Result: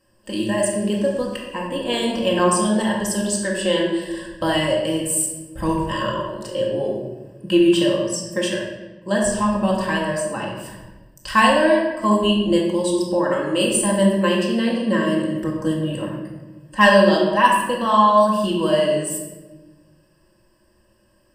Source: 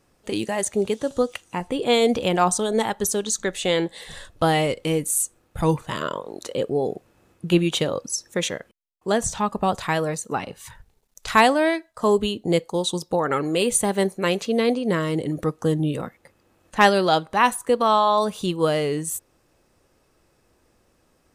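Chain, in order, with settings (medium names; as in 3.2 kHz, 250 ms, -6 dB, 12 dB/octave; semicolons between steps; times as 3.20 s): rippled EQ curve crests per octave 1.3, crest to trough 15 dB; simulated room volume 760 m³, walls mixed, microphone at 2.1 m; trim -5 dB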